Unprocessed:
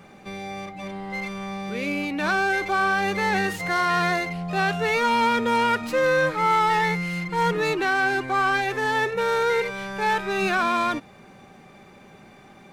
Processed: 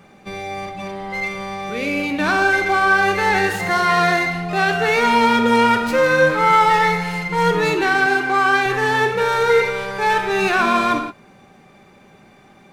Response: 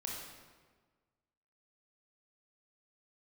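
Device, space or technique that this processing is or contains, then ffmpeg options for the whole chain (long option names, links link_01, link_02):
keyed gated reverb: -filter_complex "[0:a]asplit=3[link_01][link_02][link_03];[1:a]atrim=start_sample=2205[link_04];[link_02][link_04]afir=irnorm=-1:irlink=0[link_05];[link_03]apad=whole_len=561226[link_06];[link_05][link_06]sidechaingate=range=-33dB:threshold=-40dB:ratio=16:detection=peak,volume=1dB[link_07];[link_01][link_07]amix=inputs=2:normalize=0,asettb=1/sr,asplit=3[link_08][link_09][link_10];[link_08]atrim=end=8.064[link_11];[link_09]atrim=start=8.06:end=8.66,asetpts=PTS-STARTPTS,afade=type=in:duration=0.004:curve=qsin,afade=type=out:start_time=0.596:duration=0.004:curve=qsin,highpass=210[link_12];[link_10]atrim=start=8.656[link_13];[link_11][link_12]acrossfade=duration=0.004:curve1=hsin:curve2=qsin[link_14];[link_14][link_13]acrossfade=duration=0.004:curve1=qsin:curve2=hsin"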